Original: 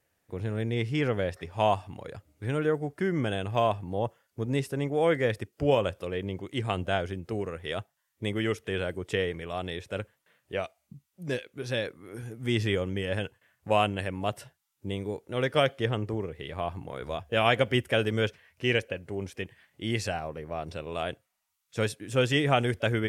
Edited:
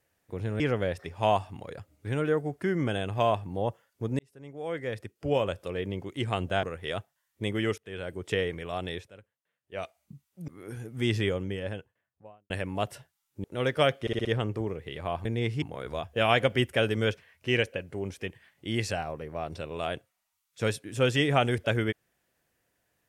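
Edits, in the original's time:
0:00.60–0:00.97: move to 0:16.78
0:04.56–0:06.16: fade in
0:07.00–0:07.44: remove
0:08.59–0:09.11: fade in, from −19 dB
0:09.79–0:10.65: duck −17.5 dB, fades 0.13 s
0:11.29–0:11.94: remove
0:12.57–0:13.96: fade out and dull
0:14.90–0:15.21: remove
0:15.78: stutter 0.06 s, 5 plays

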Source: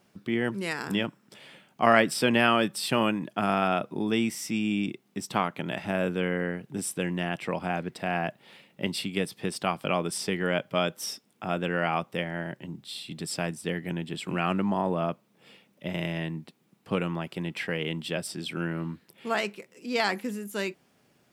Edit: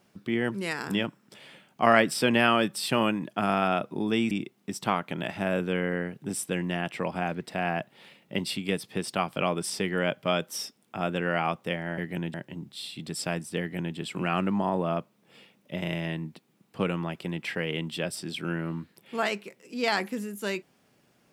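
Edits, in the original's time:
0:04.31–0:04.79: remove
0:13.72–0:14.08: duplicate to 0:12.46

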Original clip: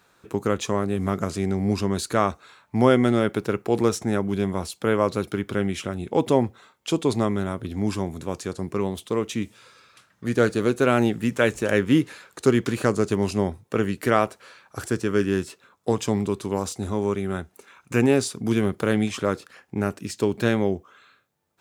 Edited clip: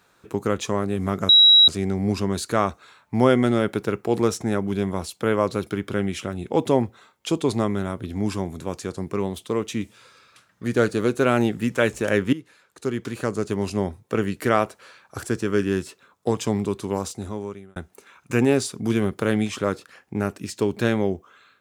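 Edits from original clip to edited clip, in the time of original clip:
0:01.29: insert tone 3,870 Hz −9 dBFS 0.39 s
0:11.94–0:13.64: fade in, from −18 dB
0:16.60–0:17.37: fade out

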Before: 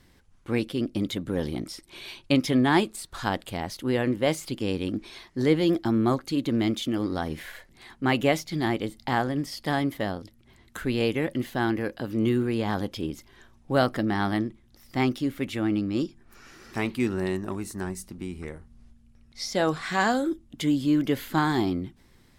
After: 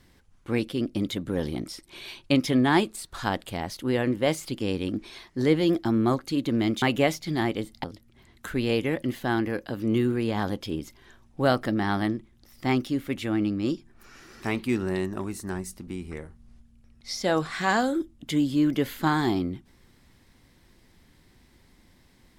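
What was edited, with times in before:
0:06.82–0:08.07: remove
0:09.09–0:10.15: remove

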